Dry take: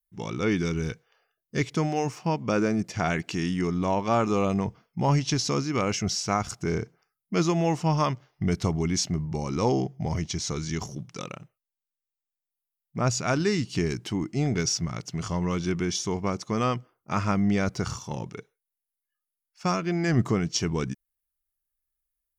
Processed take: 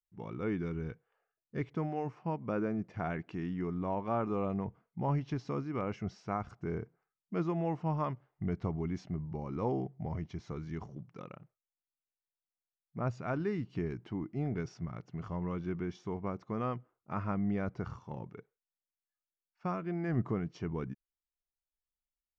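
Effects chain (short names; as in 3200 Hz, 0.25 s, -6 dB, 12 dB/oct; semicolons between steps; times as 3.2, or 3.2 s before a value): LPF 1600 Hz 12 dB/oct; gain -9 dB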